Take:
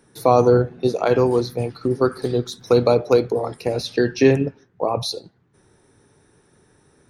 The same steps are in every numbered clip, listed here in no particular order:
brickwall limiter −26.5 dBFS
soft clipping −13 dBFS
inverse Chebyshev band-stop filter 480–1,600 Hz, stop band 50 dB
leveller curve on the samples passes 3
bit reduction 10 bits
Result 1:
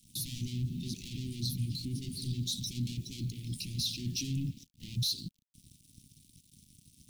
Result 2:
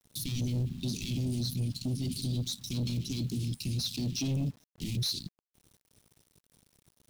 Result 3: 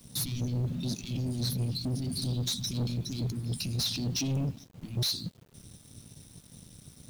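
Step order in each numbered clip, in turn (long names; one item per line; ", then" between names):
soft clipping, then leveller curve on the samples, then brickwall limiter, then bit reduction, then inverse Chebyshev band-stop filter
leveller curve on the samples, then inverse Chebyshev band-stop filter, then soft clipping, then brickwall limiter, then bit reduction
soft clipping, then brickwall limiter, then inverse Chebyshev band-stop filter, then leveller curve on the samples, then bit reduction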